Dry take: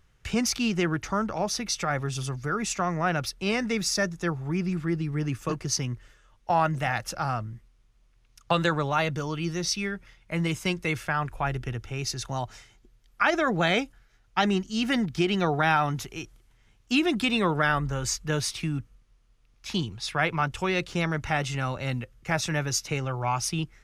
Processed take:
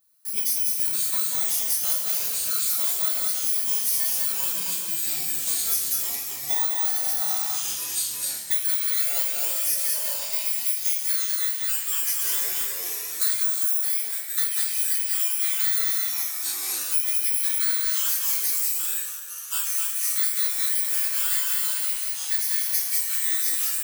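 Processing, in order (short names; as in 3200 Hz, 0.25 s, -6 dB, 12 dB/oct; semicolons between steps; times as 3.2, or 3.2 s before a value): FFT order left unsorted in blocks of 16 samples; differentiator; feedback echo 0.194 s, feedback 23%, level -3.5 dB; high-pass sweep 66 Hz -> 1900 Hz, 4.99–8.26; 13.41–13.83 Chebyshev band-stop 1600–5500 Hz, order 5; reverb, pre-delay 3 ms, DRR -7 dB; echoes that change speed 0.328 s, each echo -5 st, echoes 3, each echo -6 dB; compressor 4:1, threshold -19 dBFS, peak gain reduction 8.5 dB; gain -1.5 dB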